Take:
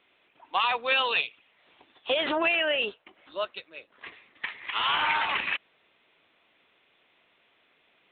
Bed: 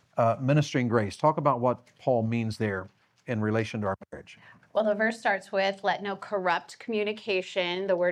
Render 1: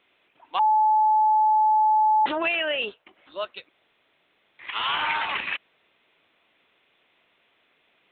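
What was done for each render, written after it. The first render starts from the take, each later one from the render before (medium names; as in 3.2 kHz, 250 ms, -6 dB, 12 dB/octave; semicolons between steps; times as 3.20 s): 0.59–2.26 s: bleep 862 Hz -16 dBFS; 3.69–4.59 s: room tone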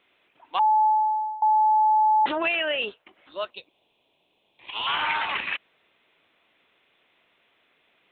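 0.86–1.42 s: fade out, to -22.5 dB; 3.50–4.87 s: high-order bell 1.6 kHz -15.5 dB 1 oct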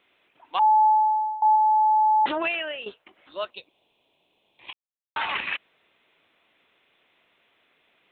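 0.59–1.56 s: doubling 28 ms -10 dB; 2.36–2.86 s: fade out, to -12.5 dB; 4.73–5.16 s: mute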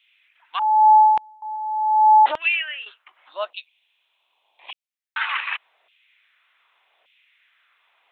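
LFO high-pass saw down 0.85 Hz 650–2900 Hz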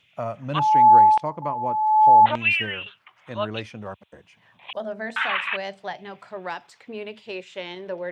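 add bed -6 dB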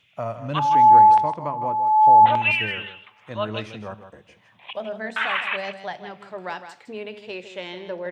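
delay 159 ms -10.5 dB; two-slope reverb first 0.63 s, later 2.3 s, DRR 15.5 dB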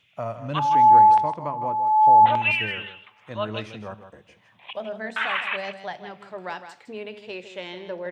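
trim -1.5 dB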